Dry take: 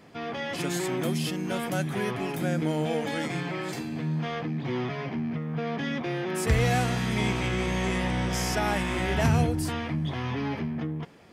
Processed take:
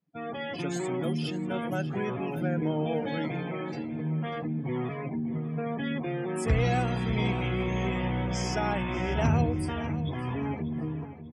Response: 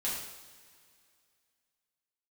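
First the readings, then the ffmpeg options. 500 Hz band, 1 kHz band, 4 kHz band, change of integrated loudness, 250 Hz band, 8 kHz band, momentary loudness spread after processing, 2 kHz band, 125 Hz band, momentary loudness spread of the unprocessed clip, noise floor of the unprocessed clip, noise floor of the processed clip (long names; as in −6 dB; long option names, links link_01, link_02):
−1.5 dB, −2.0 dB, −5.5 dB, −2.0 dB, −1.0 dB, −8.0 dB, 7 LU, −4.5 dB, −1.0 dB, 7 LU, −35 dBFS, −37 dBFS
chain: -filter_complex "[0:a]afftdn=noise_reduction=35:noise_floor=-36,adynamicequalizer=threshold=0.00282:dfrequency=1800:dqfactor=4.4:tfrequency=1800:tqfactor=4.4:attack=5:release=100:ratio=0.375:range=3:mode=cutabove:tftype=bell,asplit=2[link_01][link_02];[link_02]adelay=592,lowpass=frequency=3400:poles=1,volume=-12dB,asplit=2[link_03][link_04];[link_04]adelay=592,lowpass=frequency=3400:poles=1,volume=0.43,asplit=2[link_05][link_06];[link_06]adelay=592,lowpass=frequency=3400:poles=1,volume=0.43,asplit=2[link_07][link_08];[link_08]adelay=592,lowpass=frequency=3400:poles=1,volume=0.43[link_09];[link_03][link_05][link_07][link_09]amix=inputs=4:normalize=0[link_10];[link_01][link_10]amix=inputs=2:normalize=0,volume=-1.5dB"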